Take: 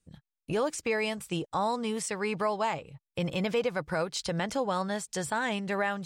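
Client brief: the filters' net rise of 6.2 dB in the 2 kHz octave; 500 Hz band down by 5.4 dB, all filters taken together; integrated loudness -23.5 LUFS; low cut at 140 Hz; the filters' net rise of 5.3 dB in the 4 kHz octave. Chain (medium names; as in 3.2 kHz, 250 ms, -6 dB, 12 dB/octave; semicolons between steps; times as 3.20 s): high-pass 140 Hz; peaking EQ 500 Hz -7 dB; peaking EQ 2 kHz +7 dB; peaking EQ 4 kHz +4.5 dB; trim +6.5 dB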